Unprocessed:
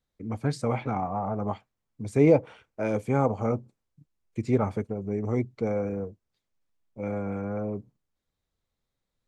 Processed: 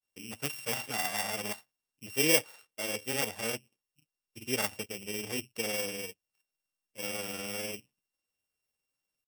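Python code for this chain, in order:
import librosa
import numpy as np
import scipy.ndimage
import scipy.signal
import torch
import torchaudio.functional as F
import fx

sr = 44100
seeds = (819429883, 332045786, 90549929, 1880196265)

p1 = np.r_[np.sort(x[:len(x) // 16 * 16].reshape(-1, 16), axis=1).ravel(), x[len(x) // 16 * 16:]]
p2 = fx.high_shelf(p1, sr, hz=6100.0, db=-5.0)
p3 = fx.rider(p2, sr, range_db=3, speed_s=0.5)
p4 = p2 + F.gain(torch.from_numpy(p3), 0.0).numpy()
p5 = fx.granulator(p4, sr, seeds[0], grain_ms=100.0, per_s=20.0, spray_ms=36.0, spread_st=0)
p6 = fx.riaa(p5, sr, side='recording')
y = F.gain(torch.from_numpy(p6), -10.5).numpy()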